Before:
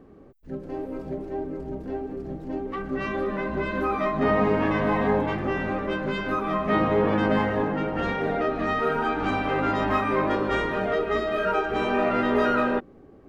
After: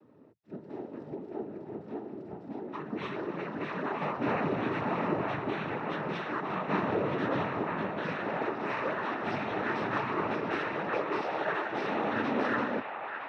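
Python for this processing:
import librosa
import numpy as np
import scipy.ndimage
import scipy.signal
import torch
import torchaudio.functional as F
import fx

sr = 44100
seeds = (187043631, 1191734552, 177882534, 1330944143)

p1 = scipy.signal.sosfilt(scipy.signal.butter(4, 5200.0, 'lowpass', fs=sr, output='sos'), x)
p2 = fx.noise_vocoder(p1, sr, seeds[0], bands=12)
p3 = p2 + fx.echo_wet_bandpass(p2, sr, ms=962, feedback_pct=48, hz=1400.0, wet_db=-4.0, dry=0)
y = F.gain(torch.from_numpy(p3), -7.5).numpy()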